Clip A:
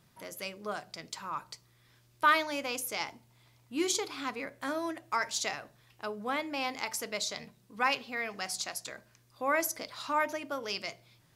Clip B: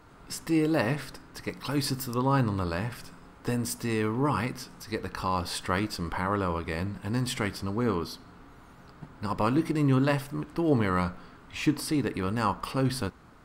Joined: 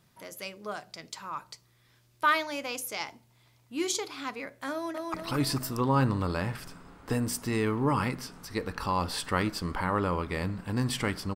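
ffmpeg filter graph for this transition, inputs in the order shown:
ffmpeg -i cue0.wav -i cue1.wav -filter_complex "[0:a]apad=whole_dur=11.35,atrim=end=11.35,atrim=end=5.142[link_01];[1:a]atrim=start=1.508:end=7.72[link_02];[link_01][link_02]acrossfade=duration=0.004:curve1=hsin:curve2=hsin,asplit=2[link_03][link_04];[link_04]afade=type=in:start_time=4.72:duration=0.01,afade=type=out:start_time=5.14:duration=0.01,aecho=0:1:220|440|660|880|1100|1320|1540|1760:0.794328|0.436881|0.240284|0.132156|0.072686|0.0399773|0.0219875|0.0120931[link_05];[link_03][link_05]amix=inputs=2:normalize=0" out.wav

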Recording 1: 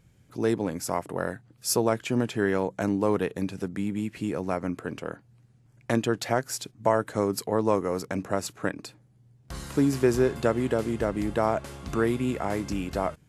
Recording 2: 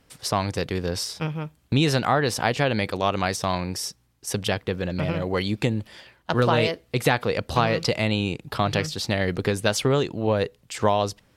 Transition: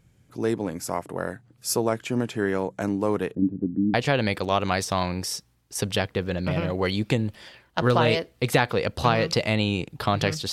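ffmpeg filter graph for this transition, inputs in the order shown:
ffmpeg -i cue0.wav -i cue1.wav -filter_complex "[0:a]asettb=1/sr,asplit=3[link_01][link_02][link_03];[link_01]atrim=end=3.354[link_04];[link_02]atrim=start=3.35:end=3.94,asetpts=PTS-STARTPTS,afade=type=in:duration=0.004:curve=qsin,afade=type=out:start_time=0.586:duration=0.004:curve=qsin,lowpass=frequency=280:width_type=q:width=3.2[link_05];[link_03]atrim=start=3.936[link_06];[link_04][link_05]acrossfade=duration=0.004:curve1=hsin:curve2=qsin[link_07];[link_07][link_06]acrossfade=duration=0.004:curve1=qsin:curve2=hsin,apad=whole_dur=10.52,atrim=end=10.52,atrim=end=3.942[link_08];[1:a]atrim=start=2.458:end=9.04[link_09];[link_08][link_09]acrossfade=duration=0.004:curve1=hsin:curve2=hsin" out.wav

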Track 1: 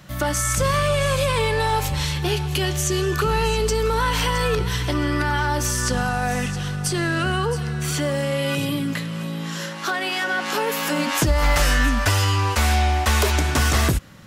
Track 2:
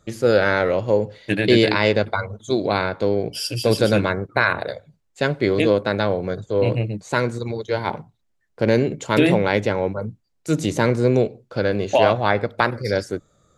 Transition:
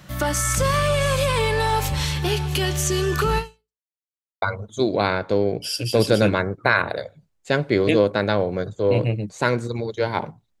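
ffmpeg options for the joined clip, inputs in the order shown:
ffmpeg -i cue0.wav -i cue1.wav -filter_complex "[0:a]apad=whole_dur=10.6,atrim=end=10.6,asplit=2[link_01][link_02];[link_01]atrim=end=3.82,asetpts=PTS-STARTPTS,afade=type=out:start_time=3.38:duration=0.44:curve=exp[link_03];[link_02]atrim=start=3.82:end=4.42,asetpts=PTS-STARTPTS,volume=0[link_04];[1:a]atrim=start=2.13:end=8.31,asetpts=PTS-STARTPTS,afade=type=in:duration=0.004:curve=hsin[link_05];[link_03][link_04][link_05]concat=n=3:v=0:a=1" out.wav

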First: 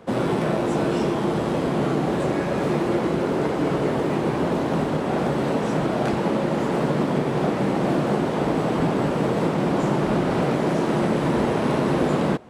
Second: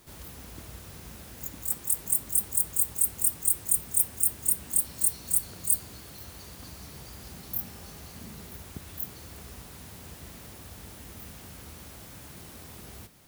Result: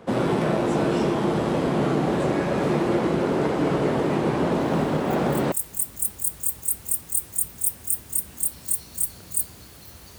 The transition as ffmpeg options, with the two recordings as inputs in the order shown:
ffmpeg -i cue0.wav -i cue1.wav -filter_complex "[1:a]asplit=2[link_01][link_02];[0:a]apad=whole_dur=10.18,atrim=end=10.18,atrim=end=5.522[link_03];[link_02]atrim=start=1.848:end=6.51[link_04];[link_01]atrim=start=0.93:end=1.85,asetpts=PTS-STARTPTS,volume=-9dB,afade=type=in:duration=0.004:curve=hsin,afade=type=out:start_time=0.916:duration=0.004:curve=hsin,adelay=4600[link_05];[link_03][link_04]acrossfade=duration=0.004:curve1=hsin:curve2=hsin[link_06];[link_06][link_05]amix=inputs=2:normalize=0" out.wav

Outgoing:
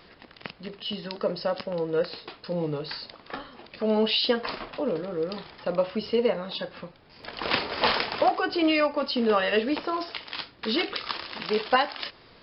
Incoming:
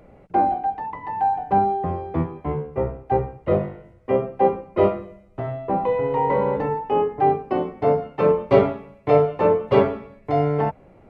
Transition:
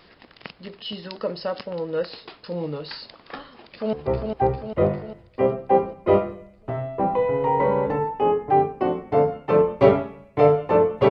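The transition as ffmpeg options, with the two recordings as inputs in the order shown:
ffmpeg -i cue0.wav -i cue1.wav -filter_complex "[0:a]apad=whole_dur=11.1,atrim=end=11.1,atrim=end=3.932[link_01];[1:a]atrim=start=2.628:end=9.8[link_02];[link_01][link_02]acrossfade=duration=0.004:curve1=hsin:curve2=hsin,asplit=2[link_03][link_04];[link_04]afade=type=in:start_time=3.45:duration=0.01,afade=type=out:start_time=3.93:duration=0.01,aecho=0:1:400|800|1200|1600|2000|2400|2800|3200|3600:0.630957|0.378574|0.227145|0.136287|0.0817721|0.0490632|0.0294379|0.0176628|0.0105977[link_05];[link_03][link_05]amix=inputs=2:normalize=0" out.wav

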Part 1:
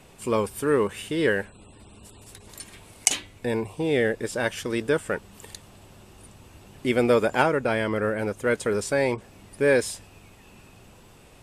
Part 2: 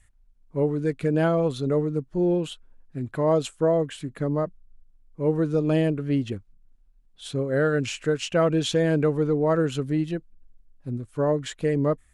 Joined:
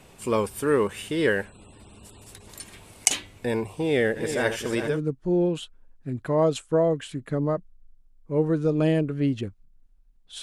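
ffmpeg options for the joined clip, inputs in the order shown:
ffmpeg -i cue0.wav -i cue1.wav -filter_complex "[0:a]asplit=3[link_01][link_02][link_03];[link_01]afade=type=out:start_time=4.15:duration=0.02[link_04];[link_02]aecho=1:1:81|268|401:0.282|0.133|0.398,afade=type=in:start_time=4.15:duration=0.02,afade=type=out:start_time=5.01:duration=0.02[link_05];[link_03]afade=type=in:start_time=5.01:duration=0.02[link_06];[link_04][link_05][link_06]amix=inputs=3:normalize=0,apad=whole_dur=10.42,atrim=end=10.42,atrim=end=5.01,asetpts=PTS-STARTPTS[link_07];[1:a]atrim=start=1.7:end=7.31,asetpts=PTS-STARTPTS[link_08];[link_07][link_08]acrossfade=duration=0.2:curve1=tri:curve2=tri" out.wav

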